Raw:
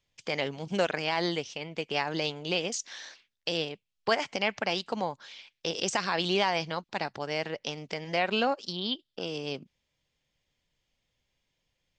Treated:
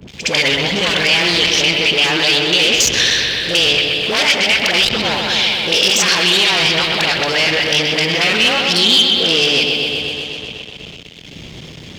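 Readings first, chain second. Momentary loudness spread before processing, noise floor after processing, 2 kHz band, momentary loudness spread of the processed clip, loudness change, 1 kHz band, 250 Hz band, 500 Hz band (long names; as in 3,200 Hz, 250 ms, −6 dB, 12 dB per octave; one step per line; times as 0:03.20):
10 LU, −35 dBFS, +20.0 dB, 6 LU, +18.5 dB, +10.0 dB, +12.5 dB, +11.5 dB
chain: wavefolder on the positive side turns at −28.5 dBFS
wind on the microphone 90 Hz −46 dBFS
in parallel at −0.5 dB: compressor whose output falls as the input rises −34 dBFS
on the sum: parametric band 4,900 Hz −2 dB
brickwall limiter −19.5 dBFS, peak gain reduction 10 dB
hum removal 98.59 Hz, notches 39
all-pass dispersion highs, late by 81 ms, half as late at 760 Hz
on a send: bucket-brigade delay 126 ms, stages 4,096, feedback 72%, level −7 dB
on the sum: leveller curve on the samples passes 3
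meter weighting curve D
echo ahead of the sound 64 ms −15.5 dB
multiband upward and downward compressor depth 40%
level +3 dB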